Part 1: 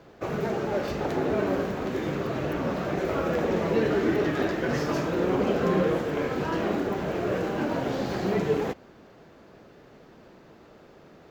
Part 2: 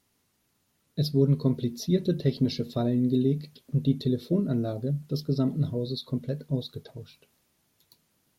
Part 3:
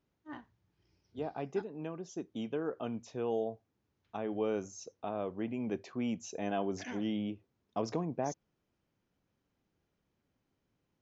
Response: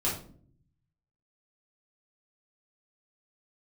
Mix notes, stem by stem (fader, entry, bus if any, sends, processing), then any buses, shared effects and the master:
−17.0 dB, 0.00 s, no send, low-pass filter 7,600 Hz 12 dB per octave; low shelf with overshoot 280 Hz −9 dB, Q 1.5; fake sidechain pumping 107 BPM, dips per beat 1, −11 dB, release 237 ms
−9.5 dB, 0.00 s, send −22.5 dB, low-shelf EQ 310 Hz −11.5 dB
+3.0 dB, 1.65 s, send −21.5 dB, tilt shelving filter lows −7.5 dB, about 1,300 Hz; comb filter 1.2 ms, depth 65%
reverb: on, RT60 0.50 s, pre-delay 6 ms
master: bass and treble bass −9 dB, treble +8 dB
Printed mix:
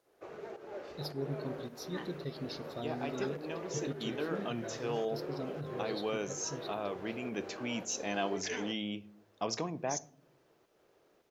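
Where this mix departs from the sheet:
stem 3: missing comb filter 1.2 ms, depth 65%
master: missing bass and treble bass −9 dB, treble +8 dB

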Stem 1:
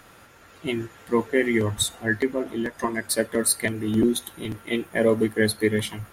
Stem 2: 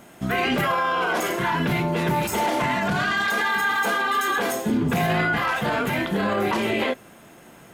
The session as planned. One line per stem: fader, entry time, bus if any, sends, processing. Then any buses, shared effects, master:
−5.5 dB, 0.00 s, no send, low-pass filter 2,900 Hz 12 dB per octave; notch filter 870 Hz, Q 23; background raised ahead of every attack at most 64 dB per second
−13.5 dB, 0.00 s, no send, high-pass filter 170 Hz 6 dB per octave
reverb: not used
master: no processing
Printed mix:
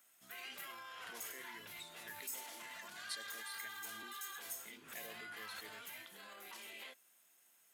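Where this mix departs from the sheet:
stem 1 −5.5 dB → −15.0 dB
master: extra first-order pre-emphasis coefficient 0.97

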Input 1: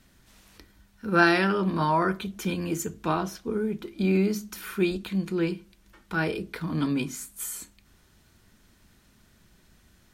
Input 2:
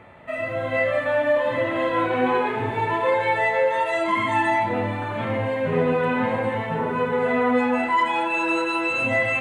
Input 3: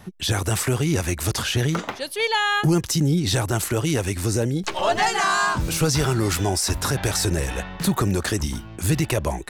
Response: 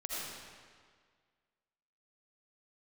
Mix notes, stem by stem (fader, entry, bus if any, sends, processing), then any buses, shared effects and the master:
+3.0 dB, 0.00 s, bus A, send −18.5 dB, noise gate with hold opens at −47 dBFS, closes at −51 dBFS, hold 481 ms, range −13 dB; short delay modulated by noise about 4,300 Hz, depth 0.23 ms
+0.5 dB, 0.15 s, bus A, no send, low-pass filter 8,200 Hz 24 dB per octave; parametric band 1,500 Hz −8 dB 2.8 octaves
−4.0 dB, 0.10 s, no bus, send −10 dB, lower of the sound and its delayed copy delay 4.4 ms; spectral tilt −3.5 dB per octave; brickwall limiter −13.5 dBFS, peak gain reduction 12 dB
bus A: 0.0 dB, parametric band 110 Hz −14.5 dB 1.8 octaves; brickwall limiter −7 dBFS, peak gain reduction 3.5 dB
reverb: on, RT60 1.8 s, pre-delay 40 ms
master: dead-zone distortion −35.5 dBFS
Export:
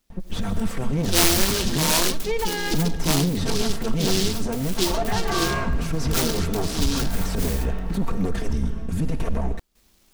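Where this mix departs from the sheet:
stem 1: send off
stem 2: muted
master: missing dead-zone distortion −35.5 dBFS

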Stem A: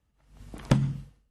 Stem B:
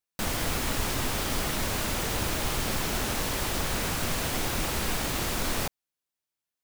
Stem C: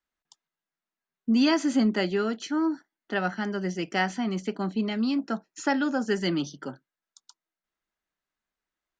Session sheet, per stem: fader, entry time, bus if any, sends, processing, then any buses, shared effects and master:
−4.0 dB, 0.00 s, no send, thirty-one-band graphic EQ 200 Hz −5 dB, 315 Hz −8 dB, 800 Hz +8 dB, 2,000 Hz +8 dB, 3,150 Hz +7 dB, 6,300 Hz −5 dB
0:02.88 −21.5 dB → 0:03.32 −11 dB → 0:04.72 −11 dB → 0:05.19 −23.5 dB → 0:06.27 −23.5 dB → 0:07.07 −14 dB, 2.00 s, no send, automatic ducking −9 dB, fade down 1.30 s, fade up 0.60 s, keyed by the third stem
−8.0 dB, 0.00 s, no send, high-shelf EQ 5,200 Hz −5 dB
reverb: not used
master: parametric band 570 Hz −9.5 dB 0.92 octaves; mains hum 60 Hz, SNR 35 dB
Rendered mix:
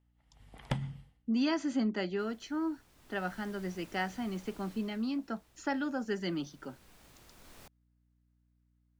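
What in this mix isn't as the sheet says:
stem A −4.0 dB → −10.5 dB
stem B −21.5 dB → −28.0 dB
master: missing parametric band 570 Hz −9.5 dB 0.92 octaves

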